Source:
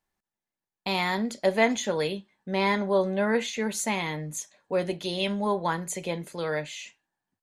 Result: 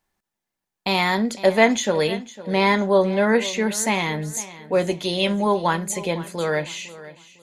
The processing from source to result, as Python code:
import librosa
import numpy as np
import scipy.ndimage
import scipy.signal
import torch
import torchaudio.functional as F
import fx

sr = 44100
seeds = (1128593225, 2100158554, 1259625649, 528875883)

y = fx.echo_feedback(x, sr, ms=504, feedback_pct=31, wet_db=-17.0)
y = y * librosa.db_to_amplitude(6.5)